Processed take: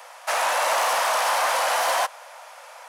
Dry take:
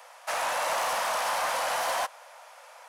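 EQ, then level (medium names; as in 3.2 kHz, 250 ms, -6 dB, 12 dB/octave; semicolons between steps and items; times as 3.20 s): high-pass 350 Hz 12 dB/octave; +6.5 dB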